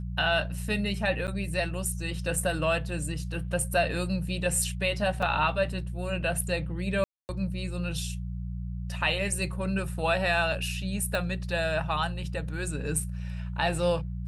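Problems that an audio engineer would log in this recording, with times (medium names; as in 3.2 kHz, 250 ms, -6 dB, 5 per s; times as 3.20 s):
hum 60 Hz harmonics 3 -34 dBFS
1.27–1.28 s: dropout 8.5 ms
5.22 s: dropout 5 ms
7.04–7.29 s: dropout 249 ms
11.15 s: pop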